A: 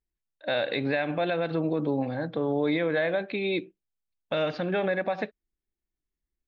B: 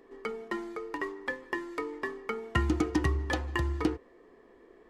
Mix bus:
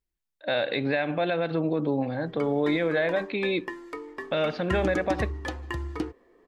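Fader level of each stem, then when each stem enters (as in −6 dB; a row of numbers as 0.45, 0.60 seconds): +1.0, −2.5 decibels; 0.00, 2.15 seconds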